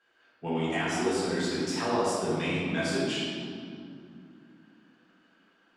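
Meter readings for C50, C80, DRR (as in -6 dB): -2.5 dB, -0.5 dB, -9.5 dB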